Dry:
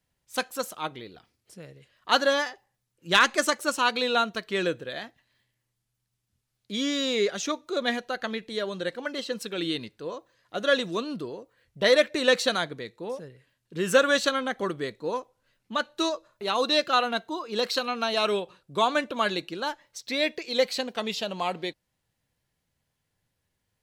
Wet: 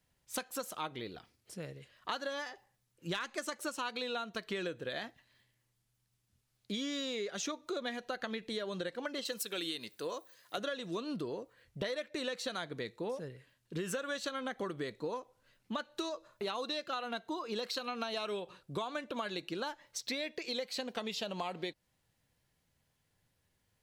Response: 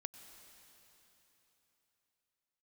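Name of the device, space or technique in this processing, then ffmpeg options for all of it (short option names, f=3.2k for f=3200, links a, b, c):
serial compression, leveller first: -filter_complex "[0:a]asettb=1/sr,asplit=3[a][b][c];[a]atrim=end=9.254[d];[b]atrim=start=9.25:end=10.58,asetpts=PTS-STARTPTS,afade=t=in:d=0.004:c=qsin,afade=t=out:st=1.326:d=0.004:c=qsin,aemphasis=mode=production:type=bsi[e];[c]atrim=start=10.576[f];[d][e]acrossfade=d=0.004:c1=hsin:c2=qsin[g];[g][f]acrossfade=d=0.004:c1=qsin:c2=hsin,acompressor=threshold=-29dB:ratio=2,acompressor=threshold=-36dB:ratio=6,volume=1dB"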